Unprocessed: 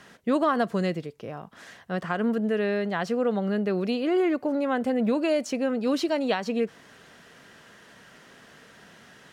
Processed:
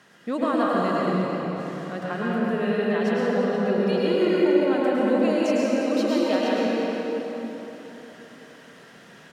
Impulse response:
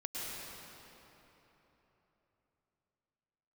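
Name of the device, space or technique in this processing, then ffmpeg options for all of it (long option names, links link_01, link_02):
cave: -filter_complex "[0:a]highpass=99,asettb=1/sr,asplit=3[link_01][link_02][link_03];[link_01]atrim=end=3.784[link_04];[link_02]atrim=start=3.78:end=4.59,asetpts=PTS-STARTPTS,afade=type=in:duration=0.004:curve=qsin,afade=type=out:start_time=0.806:duration=0.004:curve=qsin,aecho=1:1:2.1:0.85,atrim=end_sample=35721[link_05];[link_03]atrim=start=4.586[link_06];[link_04][link_05]acrossfade=duration=0.004:curve1=hsin:curve2=qsin[link_07];[link_07][link_06]acrossfade=duration=0.004:curve1=qsin:curve2=hsin,aecho=1:1:353:0.299[link_08];[1:a]atrim=start_sample=2205[link_09];[link_08][link_09]afir=irnorm=-1:irlink=0"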